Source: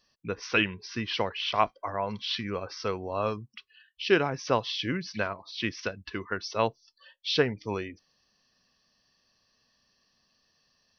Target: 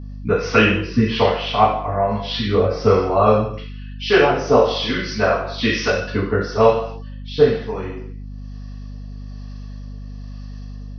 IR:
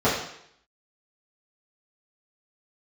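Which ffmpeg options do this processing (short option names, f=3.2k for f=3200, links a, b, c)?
-filter_complex "[0:a]asettb=1/sr,asplit=3[a][b][c];[a]atrim=end=3.514[d];[b]atrim=start=3.51:end=5.9,asetpts=PTS-STARTPTS,afade=t=in:d=0.004:c=qsin,afade=t=out:st=2.386:d=0.004:c=qsin,bass=f=250:g=-9,treble=f=4k:g=5[e];[c]atrim=start=5.896[f];[d][e]acrossfade=d=0.004:c1=hsin:c2=qsin[g];[g][f]acrossfade=d=0.004:c1=qsin:c2=hsin[h];[1:a]atrim=start_sample=2205,afade=t=out:st=0.4:d=0.01,atrim=end_sample=18081[i];[h][i]afir=irnorm=-1:irlink=0,acrossover=split=630[j][k];[j]aeval=exprs='val(0)*(1-0.5/2+0.5/2*cos(2*PI*1.1*n/s))':c=same[l];[k]aeval=exprs='val(0)*(1-0.5/2-0.5/2*cos(2*PI*1.1*n/s))':c=same[m];[l][m]amix=inputs=2:normalize=0,dynaudnorm=f=390:g=3:m=5dB,aeval=exprs='val(0)+0.0316*(sin(2*PI*50*n/s)+sin(2*PI*2*50*n/s)/2+sin(2*PI*3*50*n/s)/3+sin(2*PI*4*50*n/s)/4+sin(2*PI*5*50*n/s)/5)':c=same,volume=-1dB"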